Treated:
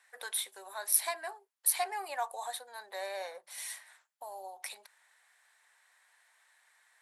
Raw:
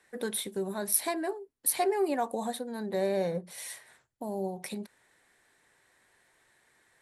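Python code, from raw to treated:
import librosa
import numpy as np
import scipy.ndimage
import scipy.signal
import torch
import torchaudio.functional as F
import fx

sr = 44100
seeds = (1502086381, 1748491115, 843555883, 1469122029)

y = scipy.signal.sosfilt(scipy.signal.butter(4, 760.0, 'highpass', fs=sr, output='sos'), x)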